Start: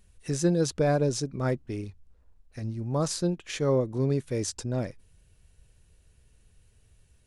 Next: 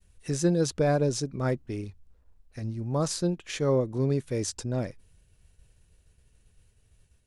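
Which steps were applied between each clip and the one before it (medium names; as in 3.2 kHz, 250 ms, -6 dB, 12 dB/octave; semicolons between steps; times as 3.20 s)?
expander -56 dBFS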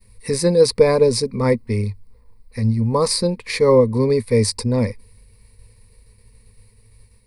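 rippled EQ curve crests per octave 0.92, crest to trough 16 dB; trim +8.5 dB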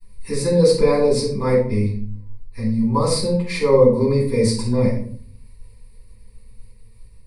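reverberation RT60 0.55 s, pre-delay 3 ms, DRR -8 dB; trim -13.5 dB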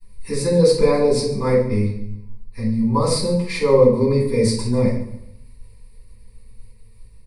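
feedback delay 141 ms, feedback 38%, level -16 dB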